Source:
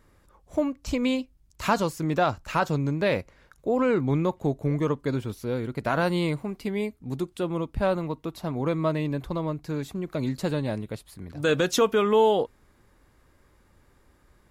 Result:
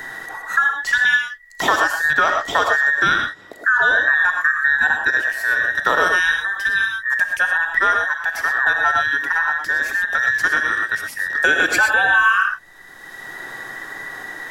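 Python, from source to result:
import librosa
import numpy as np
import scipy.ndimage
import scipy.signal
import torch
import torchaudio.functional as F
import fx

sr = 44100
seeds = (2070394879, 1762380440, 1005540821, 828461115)

p1 = fx.band_invert(x, sr, width_hz=2000)
p2 = fx.level_steps(p1, sr, step_db=13)
p3 = p1 + (p2 * librosa.db_to_amplitude(-1.5))
p4 = fx.rev_gated(p3, sr, seeds[0], gate_ms=140, shape='rising', drr_db=3.5)
p5 = fx.band_squash(p4, sr, depth_pct=70)
y = p5 * librosa.db_to_amplitude(3.0)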